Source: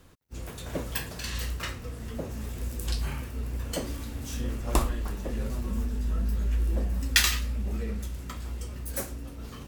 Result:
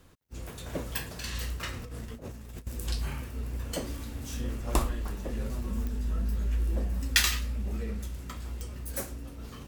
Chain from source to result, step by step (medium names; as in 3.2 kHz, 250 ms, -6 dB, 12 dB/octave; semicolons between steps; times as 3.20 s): 1.73–2.67 s: compressor with a negative ratio -38 dBFS, ratio -0.5; clicks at 5.87/8.61 s, -20 dBFS; trim -2 dB